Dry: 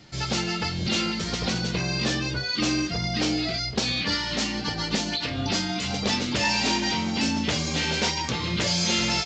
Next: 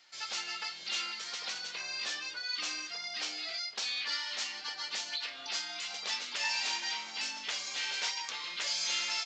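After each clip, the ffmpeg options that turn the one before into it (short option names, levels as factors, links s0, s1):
-af "highpass=1100,volume=0.422"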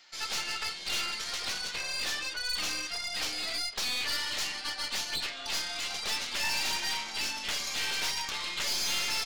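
-af "aeval=exprs='(tanh(63.1*val(0)+0.7)-tanh(0.7))/63.1':c=same,volume=2.66"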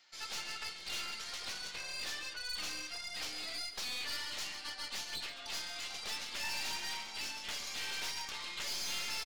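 -af "aecho=1:1:137:0.251,volume=0.398"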